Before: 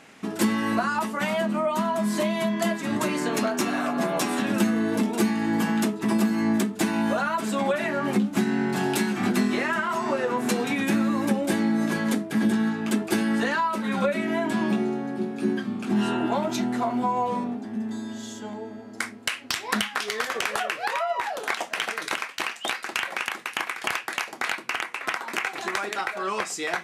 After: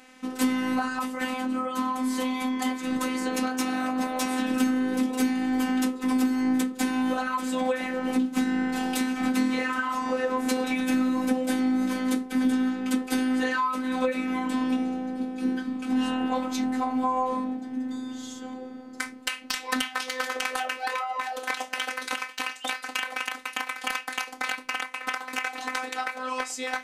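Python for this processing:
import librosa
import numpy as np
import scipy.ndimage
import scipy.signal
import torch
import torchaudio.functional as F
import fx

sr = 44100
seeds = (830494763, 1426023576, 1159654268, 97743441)

y = fx.robotise(x, sr, hz=257.0)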